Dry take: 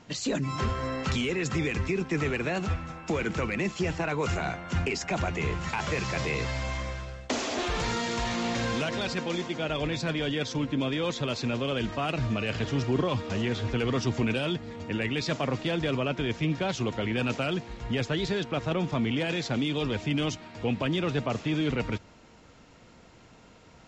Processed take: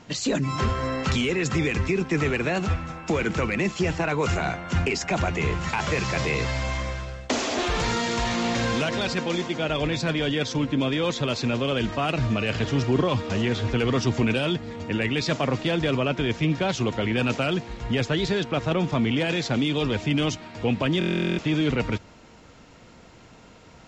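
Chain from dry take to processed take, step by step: buffer glitch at 20.99 s, samples 1024, times 16; trim +4.5 dB

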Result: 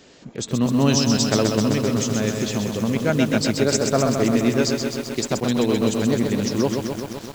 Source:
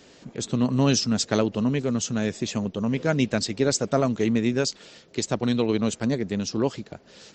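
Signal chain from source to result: bit-crushed delay 129 ms, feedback 80%, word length 7-bit, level -5 dB; trim +2 dB

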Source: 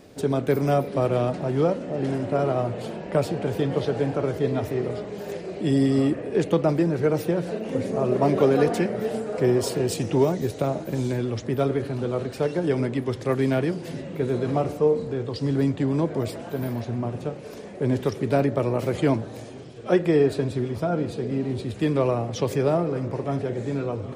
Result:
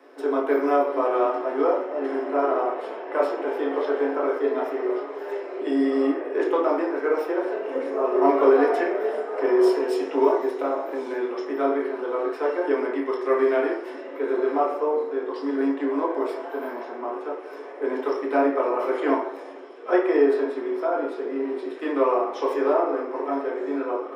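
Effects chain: rippled Chebyshev high-pass 270 Hz, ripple 6 dB; reverberation RT60 0.60 s, pre-delay 3 ms, DRR -3 dB; trim -7 dB

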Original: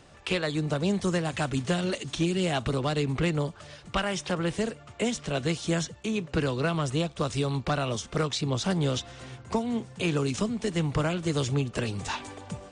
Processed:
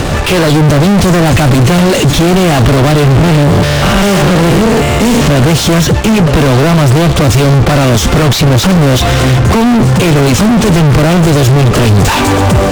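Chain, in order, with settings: 3.04–5.28 s: spectrogram pixelated in time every 200 ms; fuzz box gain 54 dB, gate -58 dBFS; tilt EQ -1.5 dB/octave; trim +4.5 dB

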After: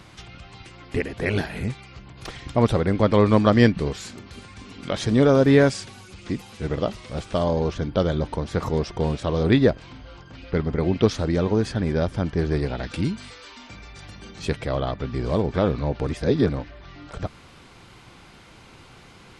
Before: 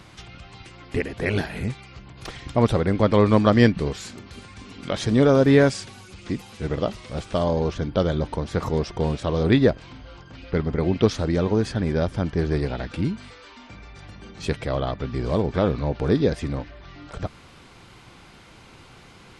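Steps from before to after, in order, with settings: 12.83–14.40 s: treble shelf 3.4 kHz +8.5 dB; 16.07–16.49 s: reverse

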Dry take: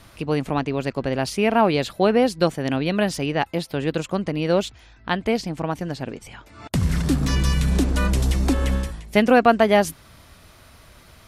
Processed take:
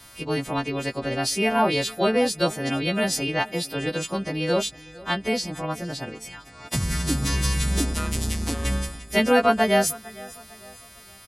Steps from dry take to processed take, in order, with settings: partials quantised in pitch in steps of 2 st; 7.93–8.65 s: AM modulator 160 Hz, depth 70%; on a send: feedback delay 454 ms, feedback 41%, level -21 dB; on the sum: trim -3 dB

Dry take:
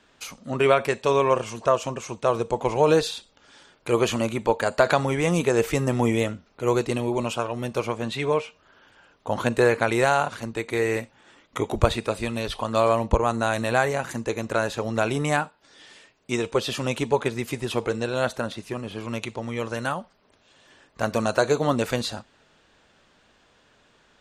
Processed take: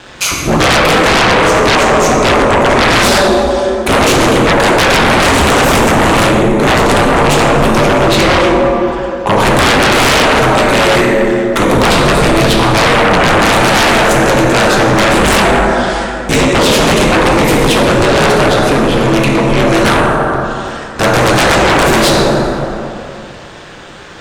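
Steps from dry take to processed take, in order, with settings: ring modulator 97 Hz; in parallel at +3 dB: compression, threshold -34 dBFS, peak gain reduction 18.5 dB; on the sum: plate-style reverb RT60 2.6 s, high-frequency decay 0.45×, DRR -1.5 dB; sine folder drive 20 dB, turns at -0.5 dBFS; trim -5 dB

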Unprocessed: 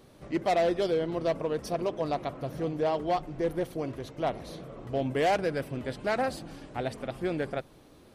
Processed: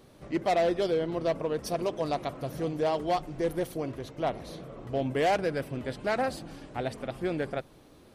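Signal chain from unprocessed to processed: 1.66–3.78 s: treble shelf 4.8 kHz +8 dB

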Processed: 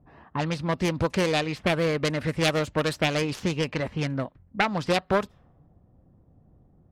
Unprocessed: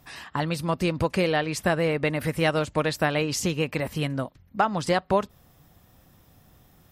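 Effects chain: self-modulated delay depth 0.26 ms; level-controlled noise filter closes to 490 Hz, open at -20.5 dBFS

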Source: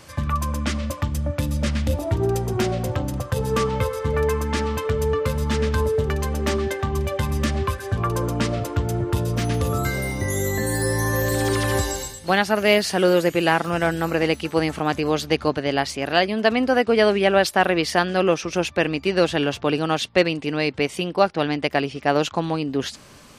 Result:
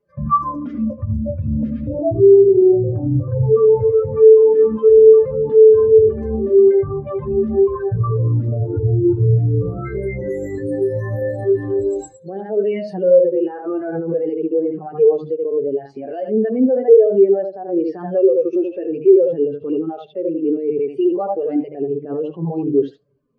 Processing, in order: treble shelf 6.2 kHz -5 dB; filtered feedback delay 78 ms, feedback 16%, low-pass 4.4 kHz, level -7 dB; flange 0.4 Hz, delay 4.8 ms, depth 4.4 ms, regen -11%; compression 6:1, threshold -25 dBFS, peak gain reduction 12.5 dB; peaking EQ 430 Hz +7.5 dB 0.65 oct; de-hum 75.44 Hz, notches 14; loudness maximiser +23.5 dB; spectral contrast expander 2.5:1

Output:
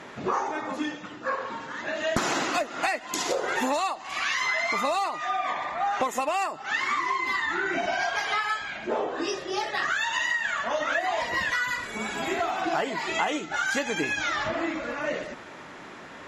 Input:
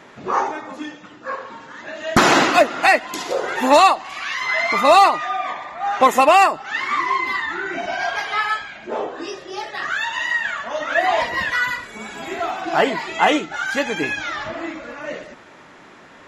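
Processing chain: dynamic bell 7 kHz, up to +6 dB, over -42 dBFS, Q 1.4; compression 12:1, threshold -25 dBFS, peak gain reduction 18 dB; Chebyshev shaper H 4 -39 dB, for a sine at -12 dBFS; trim +1.5 dB

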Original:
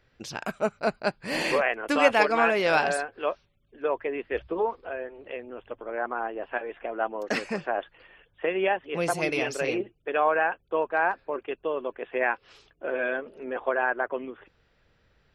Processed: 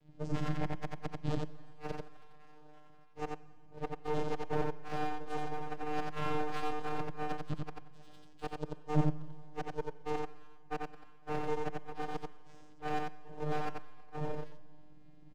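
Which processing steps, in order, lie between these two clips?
frequency axis rescaled in octaves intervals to 125%; bass shelf 410 Hz +4.5 dB; band-stop 410 Hz, Q 13; inverted gate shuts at -21 dBFS, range -38 dB; in parallel at -8.5 dB: decimation with a swept rate 24×, swing 160% 3.9 Hz; on the sum: hard clipper -31.5 dBFS, distortion -8 dB; vocoder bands 8, square 151 Hz; half-wave rectifier; delay 89 ms -3 dB; on a send at -17 dB: reverberation RT60 1.8 s, pre-delay 35 ms; on the sum: trim +5.5 dB

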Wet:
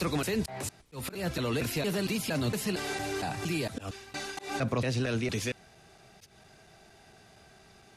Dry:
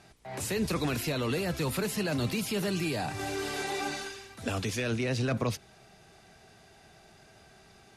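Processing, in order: slices played last to first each 230 ms, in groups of 4; slow attack 166 ms

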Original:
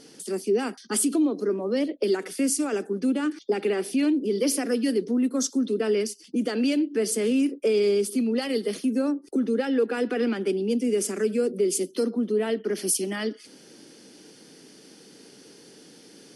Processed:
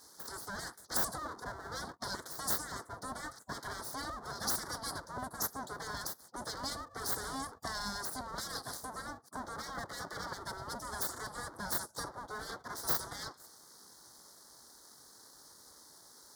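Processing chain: full-wave rectifier; Butterworth band-stop 2.6 kHz, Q 0.96; spectral gate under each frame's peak -25 dB weak

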